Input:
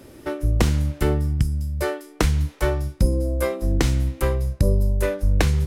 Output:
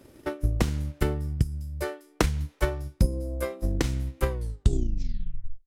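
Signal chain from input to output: tape stop on the ending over 1.38 s; transient shaper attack +7 dB, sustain -4 dB; trim -8.5 dB

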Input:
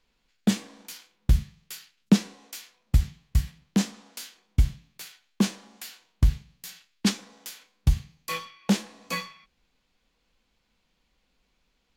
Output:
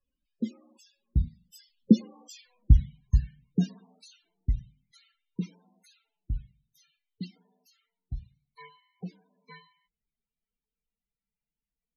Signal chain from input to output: Doppler pass-by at 2.53 s, 37 m/s, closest 22 m; loudest bins only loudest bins 16; trim +3.5 dB

